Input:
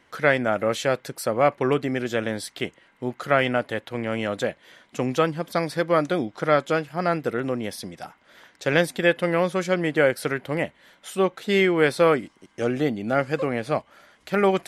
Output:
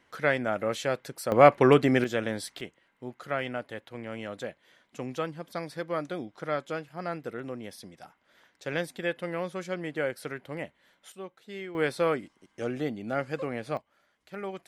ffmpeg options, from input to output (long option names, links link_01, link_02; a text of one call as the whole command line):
ffmpeg -i in.wav -af "asetnsamples=nb_out_samples=441:pad=0,asendcmd='1.32 volume volume 3dB;2.04 volume volume -4dB;2.61 volume volume -11dB;11.12 volume volume -20dB;11.75 volume volume -8dB;13.77 volume volume -17dB',volume=-6dB" out.wav